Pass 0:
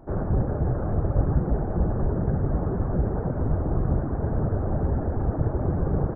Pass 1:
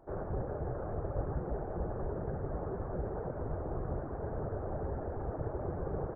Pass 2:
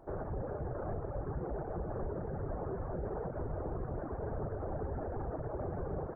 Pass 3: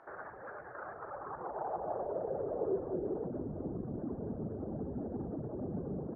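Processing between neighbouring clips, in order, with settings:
low shelf with overshoot 330 Hz −6 dB, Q 1.5; level −8 dB
reverb reduction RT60 0.58 s; brickwall limiter −33 dBFS, peak gain reduction 9.5 dB; flutter between parallel walls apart 10.3 metres, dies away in 0.29 s; level +3 dB
brickwall limiter −35.5 dBFS, peak gain reduction 7.5 dB; band-pass filter sweep 1,700 Hz → 230 Hz, 0:00.74–0:03.54; level +13.5 dB

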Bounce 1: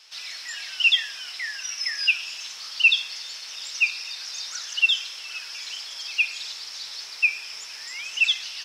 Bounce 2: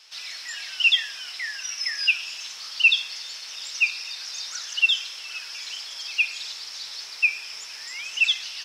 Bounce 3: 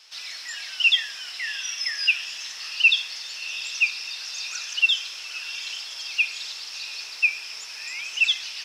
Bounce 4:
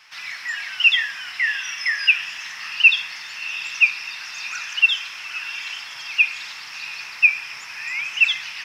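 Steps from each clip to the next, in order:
no processing that can be heard
feedback delay with all-pass diffusion 707 ms, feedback 46%, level −14 dB
graphic EQ with 10 bands 125 Hz +11 dB, 250 Hz +4 dB, 500 Hz −7 dB, 1,000 Hz +6 dB, 2,000 Hz +9 dB, 4,000 Hz −7 dB, 8,000 Hz −6 dB; level +2.5 dB

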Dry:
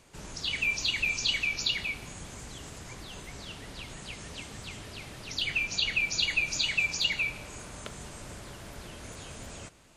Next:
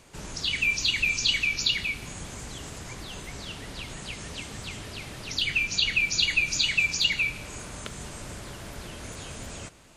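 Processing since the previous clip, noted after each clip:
dynamic equaliser 720 Hz, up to −6 dB, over −48 dBFS, Q 0.86
level +4.5 dB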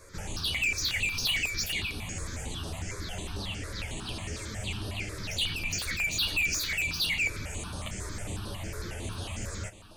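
multi-voice chorus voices 4, 0.21 Hz, delay 11 ms, depth 1.9 ms
soft clipping −31 dBFS, distortion −7 dB
step-sequenced phaser 11 Hz 800–7,200 Hz
level +7.5 dB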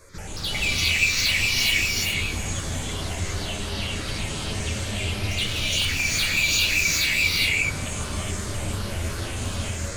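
reverb whose tail is shaped and stops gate 440 ms rising, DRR −5.5 dB
level +1.5 dB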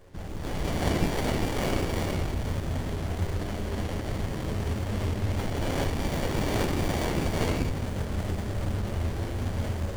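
windowed peak hold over 33 samples

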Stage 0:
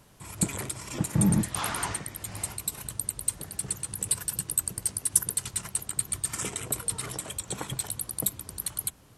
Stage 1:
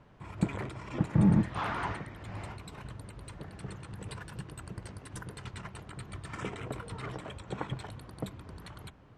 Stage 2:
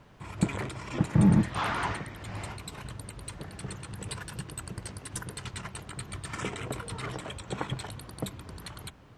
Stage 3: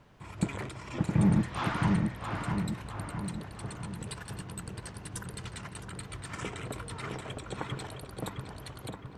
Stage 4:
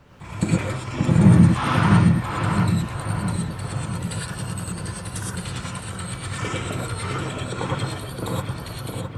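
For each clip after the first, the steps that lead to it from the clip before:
low-pass filter 2,100 Hz 12 dB per octave
high-shelf EQ 3,300 Hz +9.5 dB; level +2.5 dB
feedback echo with a low-pass in the loop 663 ms, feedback 57%, low-pass 2,000 Hz, level −3.5 dB; level −3.5 dB
spectral magnitudes quantised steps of 15 dB; reverb whose tail is shaped and stops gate 140 ms rising, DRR −3 dB; level +6.5 dB

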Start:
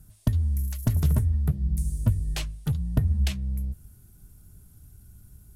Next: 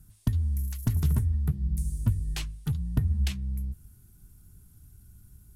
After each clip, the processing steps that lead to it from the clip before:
parametric band 580 Hz −12 dB 0.44 octaves
level −2.5 dB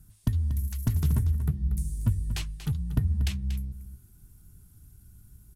single-tap delay 236 ms −11.5 dB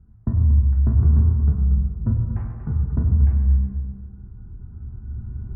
camcorder AGC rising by 7.1 dB per second
Bessel low-pass filter 900 Hz, order 8
convolution reverb RT60 1.9 s, pre-delay 6 ms, DRR −2 dB
level +1.5 dB

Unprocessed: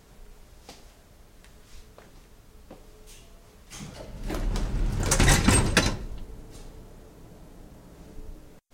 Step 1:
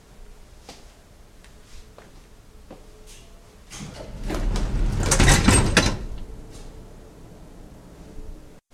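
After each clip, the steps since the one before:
low-pass filter 12,000 Hz 12 dB per octave
level +4 dB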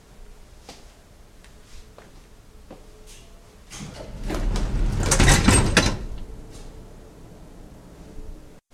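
no processing that can be heard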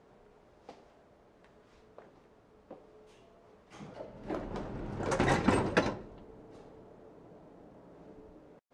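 resonant band-pass 550 Hz, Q 0.71
level −4.5 dB

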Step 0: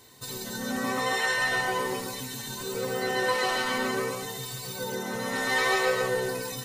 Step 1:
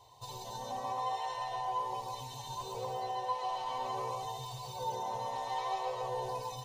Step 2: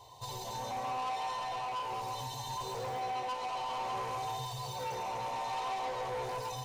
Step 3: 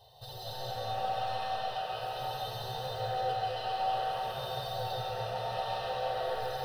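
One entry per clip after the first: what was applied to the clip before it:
drawn EQ curve 120 Hz 0 dB, 210 Hz −20 dB, 470 Hz −6 dB, 700 Hz +6 dB, 1,000 Hz +8 dB, 1,400 Hz −22 dB, 3,100 Hz −4 dB, 7,600 Hz −14 dB, 12,000 Hz −16 dB; speech leveller within 5 dB 0.5 s; parametric band 6,200 Hz +5.5 dB 0.35 octaves; level −7.5 dB
soft clipping −39 dBFS, distortion −9 dB; flutter between parallel walls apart 9.2 metres, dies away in 0.27 s; level +5 dB
phaser with its sweep stopped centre 1,500 Hz, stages 8; noise that follows the level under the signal 33 dB; comb and all-pass reverb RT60 3.4 s, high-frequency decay 0.65×, pre-delay 120 ms, DRR −5.5 dB

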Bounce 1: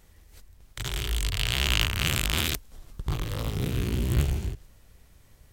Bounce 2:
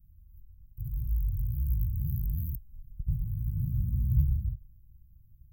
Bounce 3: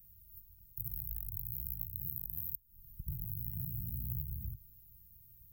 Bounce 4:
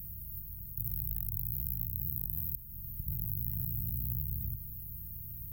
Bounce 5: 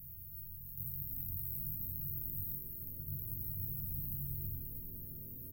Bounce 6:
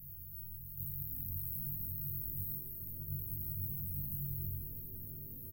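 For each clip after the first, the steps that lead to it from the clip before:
inverse Chebyshev band-stop filter 510–7,300 Hz, stop band 60 dB
spectral tilt +3.5 dB per octave; downward compressor 6 to 1, threshold −41 dBFS, peak gain reduction 17 dB; level +5.5 dB
compressor on every frequency bin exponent 0.4
resonators tuned to a chord F#2 fifth, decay 0.28 s; on a send: echo with shifted repeats 324 ms, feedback 51%, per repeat −120 Hz, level −5.5 dB; on the sum: level +5.5 dB
double-tracking delay 21 ms −5 dB; level −1 dB

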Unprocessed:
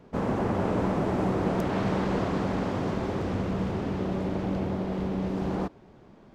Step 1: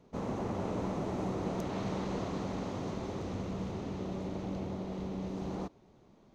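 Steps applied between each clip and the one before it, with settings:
thirty-one-band graphic EQ 1,600 Hz −6 dB, 4,000 Hz +5 dB, 6,300 Hz +9 dB
level −8.5 dB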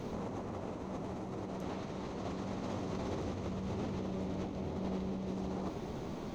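compressor whose output falls as the input rises −48 dBFS, ratio −1
flanger 0.76 Hz, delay 8.4 ms, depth 5.6 ms, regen −52%
level +13 dB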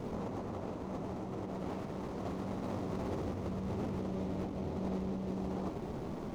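running median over 15 samples
level +1 dB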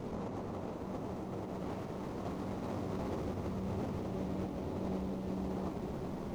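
feedback echo at a low word length 376 ms, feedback 80%, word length 10 bits, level −11 dB
level −1 dB

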